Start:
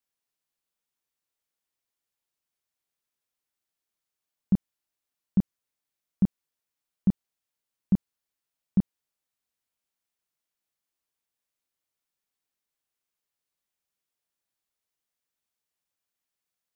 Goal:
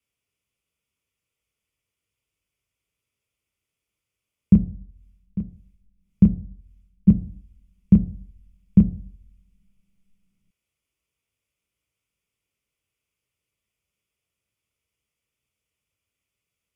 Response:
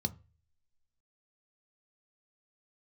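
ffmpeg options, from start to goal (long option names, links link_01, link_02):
-filter_complex "[0:a]asettb=1/sr,asplit=3[link_01][link_02][link_03];[link_01]atrim=end=4.534[link_04];[link_02]atrim=start=4.53:end=7.08,asetpts=PTS-STARTPTS,afade=type=in:duration=0.004:curve=qsin,afade=type=out:start_time=2.546:duration=0.004:curve=qsin,tremolo=f=1.8:d=0.82[link_05];[link_03]atrim=start=7.076[link_06];[link_04][link_05]acrossfade=duration=0.004:curve1=hsin:curve2=qsin[link_07];[link_07][link_06]acrossfade=duration=0.004:curve1=qsin:curve2=hsin[link_08];[1:a]atrim=start_sample=2205,asetrate=24696,aresample=44100[link_09];[link_08][link_09]afir=irnorm=-1:irlink=0,volume=-1dB"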